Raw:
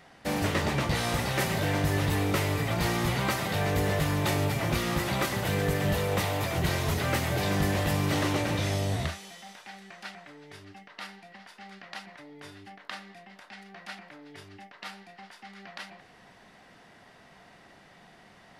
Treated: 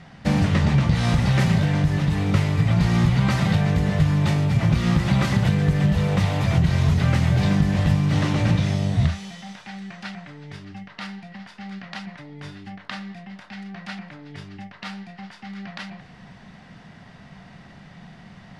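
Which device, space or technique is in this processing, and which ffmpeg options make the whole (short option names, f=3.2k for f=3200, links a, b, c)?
jukebox: -af "lowpass=6.5k,lowshelf=f=250:t=q:w=1.5:g=10,acompressor=threshold=-20dB:ratio=6,bandreject=f=50:t=h:w=6,bandreject=f=100:t=h:w=6,volume=5.5dB"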